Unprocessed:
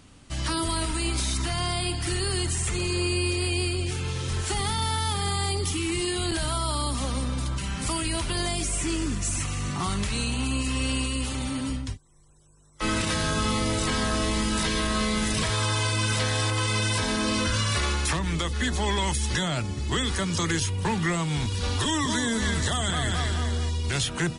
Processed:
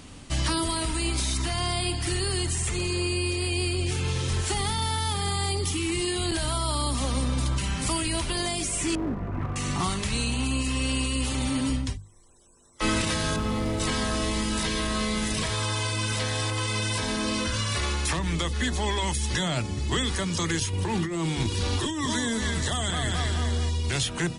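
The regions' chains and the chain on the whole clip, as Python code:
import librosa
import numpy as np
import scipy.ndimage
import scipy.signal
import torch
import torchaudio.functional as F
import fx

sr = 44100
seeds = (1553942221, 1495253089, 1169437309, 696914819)

y = fx.chain(x, sr, fx.lowpass(hz=1400.0, slope=24),
    fx.clip_hard(threshold_db=-27.5), at=(8.95, 9.56))
y = fx.chain(y, sr, fx.high_shelf(hz=2200.0, db=-12.0),
    fx.overload_stage(gain_db=23.0), at=(13.36, 13.8))
y = fx.chain(y, sr, fx.peak_eq(hz=340.0, db=12.5, octaves=0.22),
    fx.over_compress(threshold_db=-27.0, ratio=-1.0), at=(20.73, 22.04))
y = fx.peak_eq(y, sr, hz=1400.0, db=-3.0, octaves=0.39)
y = fx.rider(y, sr, range_db=10, speed_s=0.5)
y = fx.hum_notches(y, sr, base_hz=50, count=4)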